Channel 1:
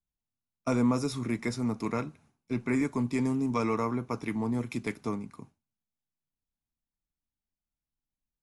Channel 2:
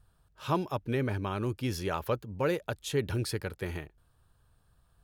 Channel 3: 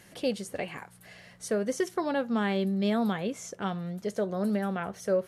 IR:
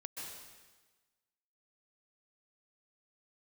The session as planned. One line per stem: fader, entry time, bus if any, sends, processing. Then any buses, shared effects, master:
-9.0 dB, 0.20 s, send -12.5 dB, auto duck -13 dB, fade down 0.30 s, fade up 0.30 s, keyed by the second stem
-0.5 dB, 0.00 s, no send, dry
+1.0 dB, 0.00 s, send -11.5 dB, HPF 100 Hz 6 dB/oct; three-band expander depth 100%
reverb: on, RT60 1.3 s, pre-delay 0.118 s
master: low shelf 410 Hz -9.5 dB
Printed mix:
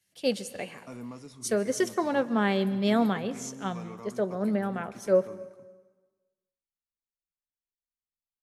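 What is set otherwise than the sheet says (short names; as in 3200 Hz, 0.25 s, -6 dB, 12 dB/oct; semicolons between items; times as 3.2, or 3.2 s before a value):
stem 1 -9.0 dB -> -16.5 dB; stem 2: muted; master: missing low shelf 410 Hz -9.5 dB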